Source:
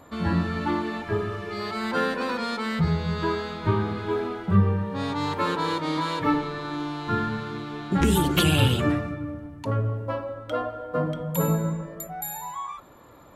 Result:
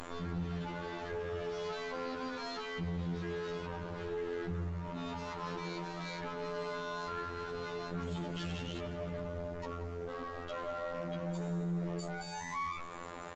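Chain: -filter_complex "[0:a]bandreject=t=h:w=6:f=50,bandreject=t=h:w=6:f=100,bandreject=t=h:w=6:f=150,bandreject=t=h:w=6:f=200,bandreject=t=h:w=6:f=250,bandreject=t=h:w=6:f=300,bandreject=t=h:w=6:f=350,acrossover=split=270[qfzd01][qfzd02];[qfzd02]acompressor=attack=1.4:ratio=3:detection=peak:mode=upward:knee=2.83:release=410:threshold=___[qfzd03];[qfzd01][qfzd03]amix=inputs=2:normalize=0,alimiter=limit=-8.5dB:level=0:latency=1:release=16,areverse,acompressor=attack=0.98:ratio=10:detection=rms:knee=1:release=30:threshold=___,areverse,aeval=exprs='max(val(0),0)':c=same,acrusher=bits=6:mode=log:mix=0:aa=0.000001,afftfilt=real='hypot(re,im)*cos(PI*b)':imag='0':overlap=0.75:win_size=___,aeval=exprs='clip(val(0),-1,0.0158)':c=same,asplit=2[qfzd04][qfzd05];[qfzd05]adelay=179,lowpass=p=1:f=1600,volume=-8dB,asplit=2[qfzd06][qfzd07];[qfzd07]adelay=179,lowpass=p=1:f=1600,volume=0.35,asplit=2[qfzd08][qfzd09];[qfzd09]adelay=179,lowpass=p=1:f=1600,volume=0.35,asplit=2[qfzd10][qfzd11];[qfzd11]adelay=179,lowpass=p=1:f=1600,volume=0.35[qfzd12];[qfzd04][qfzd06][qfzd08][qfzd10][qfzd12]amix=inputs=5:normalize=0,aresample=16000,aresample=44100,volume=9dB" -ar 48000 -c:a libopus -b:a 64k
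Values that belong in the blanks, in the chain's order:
-37dB, -34dB, 2048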